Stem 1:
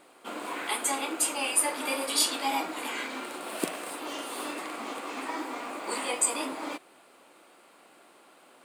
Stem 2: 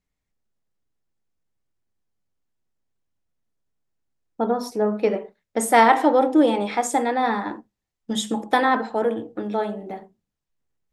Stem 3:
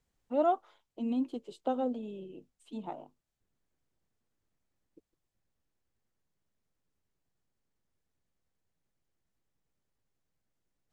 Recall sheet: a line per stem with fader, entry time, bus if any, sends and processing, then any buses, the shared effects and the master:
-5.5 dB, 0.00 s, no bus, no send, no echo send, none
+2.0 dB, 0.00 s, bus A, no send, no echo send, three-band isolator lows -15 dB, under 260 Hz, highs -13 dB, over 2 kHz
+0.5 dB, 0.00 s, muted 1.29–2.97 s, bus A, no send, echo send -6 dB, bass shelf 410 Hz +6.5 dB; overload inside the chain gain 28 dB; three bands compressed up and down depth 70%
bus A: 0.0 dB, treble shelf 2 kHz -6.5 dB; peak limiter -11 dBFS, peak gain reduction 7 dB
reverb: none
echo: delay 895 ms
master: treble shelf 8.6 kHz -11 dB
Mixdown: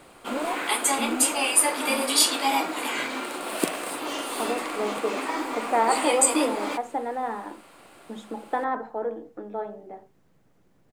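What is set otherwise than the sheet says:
stem 1 -5.5 dB -> +5.5 dB; stem 2 +2.0 dB -> -6.0 dB; master: missing treble shelf 8.6 kHz -11 dB

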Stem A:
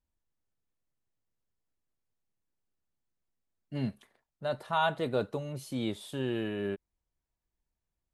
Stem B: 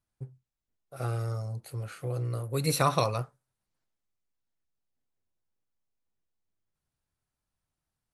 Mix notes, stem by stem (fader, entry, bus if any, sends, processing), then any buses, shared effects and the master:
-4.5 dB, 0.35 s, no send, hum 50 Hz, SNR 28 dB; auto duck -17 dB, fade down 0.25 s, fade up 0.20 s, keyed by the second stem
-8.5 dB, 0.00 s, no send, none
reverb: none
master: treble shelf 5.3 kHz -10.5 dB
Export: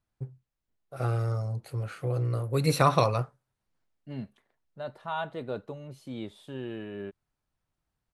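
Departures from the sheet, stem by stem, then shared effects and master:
stem A: missing hum 50 Hz, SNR 28 dB; stem B -8.5 dB -> +3.5 dB

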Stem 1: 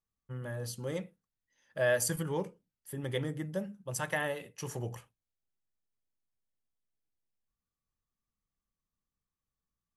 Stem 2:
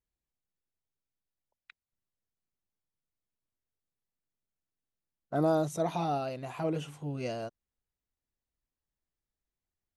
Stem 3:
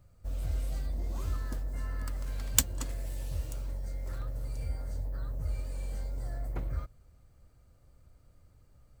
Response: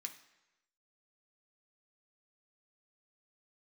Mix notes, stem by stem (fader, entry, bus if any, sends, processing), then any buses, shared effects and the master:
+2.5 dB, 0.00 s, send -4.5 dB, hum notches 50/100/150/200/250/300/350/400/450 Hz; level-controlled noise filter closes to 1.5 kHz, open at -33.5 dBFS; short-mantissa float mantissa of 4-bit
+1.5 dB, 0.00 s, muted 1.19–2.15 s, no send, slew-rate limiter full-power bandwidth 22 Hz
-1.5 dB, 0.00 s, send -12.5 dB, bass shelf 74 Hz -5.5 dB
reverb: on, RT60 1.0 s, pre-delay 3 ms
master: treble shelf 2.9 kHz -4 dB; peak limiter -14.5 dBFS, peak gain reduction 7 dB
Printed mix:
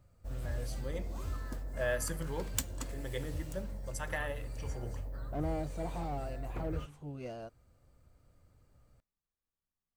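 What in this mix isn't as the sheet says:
stem 1 +2.5 dB -> -6.0 dB; stem 2 +1.5 dB -> -7.0 dB

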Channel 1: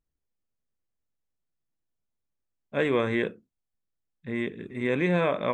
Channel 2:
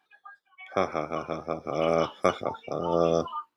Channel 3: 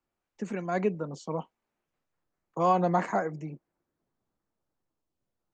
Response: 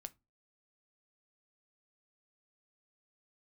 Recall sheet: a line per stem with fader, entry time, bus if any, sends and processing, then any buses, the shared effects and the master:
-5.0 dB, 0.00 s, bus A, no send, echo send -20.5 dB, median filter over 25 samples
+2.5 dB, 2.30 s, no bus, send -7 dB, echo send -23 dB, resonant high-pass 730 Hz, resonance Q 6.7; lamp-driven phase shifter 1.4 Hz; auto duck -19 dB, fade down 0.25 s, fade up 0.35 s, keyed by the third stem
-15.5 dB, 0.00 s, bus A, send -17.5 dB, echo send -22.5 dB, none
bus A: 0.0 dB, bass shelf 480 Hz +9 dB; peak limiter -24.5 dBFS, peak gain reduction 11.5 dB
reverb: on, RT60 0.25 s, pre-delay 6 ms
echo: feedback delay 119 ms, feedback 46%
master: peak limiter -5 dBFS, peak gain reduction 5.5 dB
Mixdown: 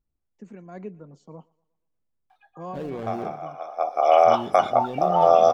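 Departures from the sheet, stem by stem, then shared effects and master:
stem 2: missing lamp-driven phase shifter 1.4 Hz; reverb return -10.0 dB

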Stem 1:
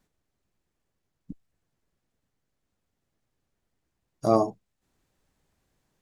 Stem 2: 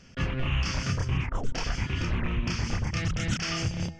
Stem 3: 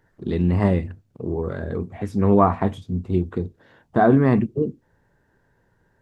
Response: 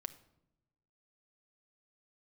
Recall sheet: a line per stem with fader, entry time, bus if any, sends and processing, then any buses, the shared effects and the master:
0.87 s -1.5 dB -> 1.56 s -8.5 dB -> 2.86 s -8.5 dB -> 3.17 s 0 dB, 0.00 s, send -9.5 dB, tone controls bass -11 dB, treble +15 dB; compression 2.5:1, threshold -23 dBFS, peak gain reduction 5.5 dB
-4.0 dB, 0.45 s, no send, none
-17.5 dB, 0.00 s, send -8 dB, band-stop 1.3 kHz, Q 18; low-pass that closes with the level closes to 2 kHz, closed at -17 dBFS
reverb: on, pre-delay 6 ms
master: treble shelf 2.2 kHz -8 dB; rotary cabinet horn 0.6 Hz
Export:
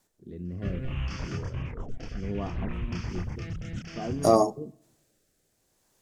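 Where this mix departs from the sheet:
stem 1 -1.5 dB -> +5.0 dB; stem 3: missing low-pass that closes with the level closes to 2 kHz, closed at -17 dBFS

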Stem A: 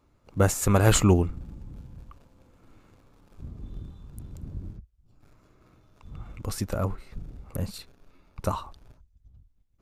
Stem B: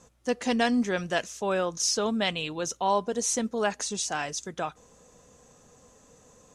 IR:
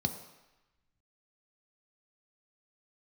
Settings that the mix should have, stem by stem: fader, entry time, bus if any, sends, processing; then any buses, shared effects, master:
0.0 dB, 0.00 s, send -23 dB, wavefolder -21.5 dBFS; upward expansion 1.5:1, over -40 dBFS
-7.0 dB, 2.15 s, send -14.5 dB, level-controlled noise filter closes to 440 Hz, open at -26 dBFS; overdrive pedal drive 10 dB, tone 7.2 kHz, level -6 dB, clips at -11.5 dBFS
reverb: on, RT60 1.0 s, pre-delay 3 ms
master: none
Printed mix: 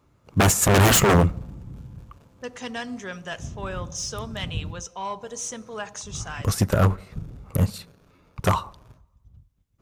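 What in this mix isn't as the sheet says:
stem A 0.0 dB -> +11.5 dB; master: extra high-pass 54 Hz

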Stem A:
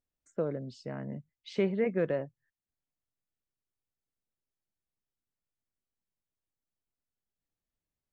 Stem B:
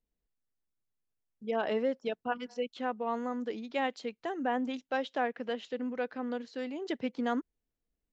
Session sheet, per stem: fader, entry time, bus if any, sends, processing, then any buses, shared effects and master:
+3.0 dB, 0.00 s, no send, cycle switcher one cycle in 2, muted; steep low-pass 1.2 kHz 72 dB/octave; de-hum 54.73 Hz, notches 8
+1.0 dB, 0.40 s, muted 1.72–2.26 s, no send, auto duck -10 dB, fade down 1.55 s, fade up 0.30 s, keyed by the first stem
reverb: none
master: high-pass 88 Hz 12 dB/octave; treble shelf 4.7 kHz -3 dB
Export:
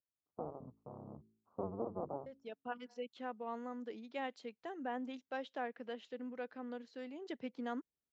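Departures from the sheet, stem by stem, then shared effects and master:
stem A +3.0 dB -> -8.5 dB; stem B +1.0 dB -> -9.5 dB

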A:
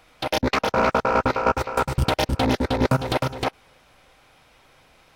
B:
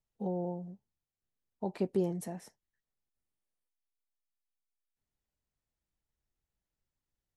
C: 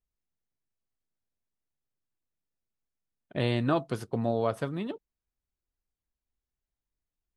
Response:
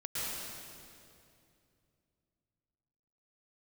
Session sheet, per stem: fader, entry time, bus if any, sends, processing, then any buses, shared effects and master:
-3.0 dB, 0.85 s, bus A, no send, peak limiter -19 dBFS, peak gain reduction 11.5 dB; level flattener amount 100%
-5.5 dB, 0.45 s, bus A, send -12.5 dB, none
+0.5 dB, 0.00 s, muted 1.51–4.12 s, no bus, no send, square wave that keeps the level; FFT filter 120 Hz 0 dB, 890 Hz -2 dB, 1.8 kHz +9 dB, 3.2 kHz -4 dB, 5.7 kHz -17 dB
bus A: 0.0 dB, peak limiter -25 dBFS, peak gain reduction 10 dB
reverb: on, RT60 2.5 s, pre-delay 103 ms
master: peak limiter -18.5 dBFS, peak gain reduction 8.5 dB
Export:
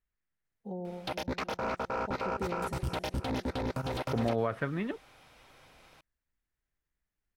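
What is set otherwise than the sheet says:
stem A: missing level flattener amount 100%; stem C: missing square wave that keeps the level

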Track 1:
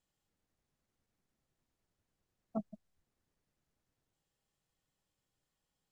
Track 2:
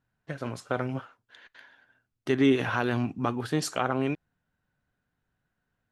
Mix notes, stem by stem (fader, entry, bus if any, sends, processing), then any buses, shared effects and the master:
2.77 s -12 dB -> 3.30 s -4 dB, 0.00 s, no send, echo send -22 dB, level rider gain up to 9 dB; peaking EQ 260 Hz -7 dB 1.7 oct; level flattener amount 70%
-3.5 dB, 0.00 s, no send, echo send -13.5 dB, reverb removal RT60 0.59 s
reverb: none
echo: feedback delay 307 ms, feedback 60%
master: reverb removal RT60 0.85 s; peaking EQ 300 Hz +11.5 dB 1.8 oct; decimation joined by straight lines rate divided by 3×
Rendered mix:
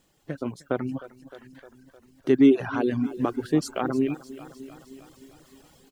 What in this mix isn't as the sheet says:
stem 1 -12.0 dB -> -21.5 dB; master: missing decimation joined by straight lines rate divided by 3×

